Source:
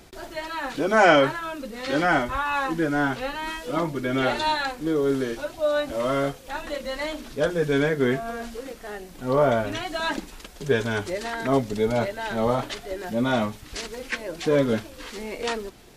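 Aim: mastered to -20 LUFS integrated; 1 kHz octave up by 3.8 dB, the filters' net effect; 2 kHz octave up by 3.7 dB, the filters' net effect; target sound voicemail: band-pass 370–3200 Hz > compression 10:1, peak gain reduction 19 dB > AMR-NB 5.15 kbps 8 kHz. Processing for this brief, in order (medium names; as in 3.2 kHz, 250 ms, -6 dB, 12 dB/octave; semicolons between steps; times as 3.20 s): band-pass 370–3200 Hz; peaking EQ 1 kHz +4.5 dB; peaking EQ 2 kHz +3.5 dB; compression 10:1, threshold -28 dBFS; trim +14.5 dB; AMR-NB 5.15 kbps 8 kHz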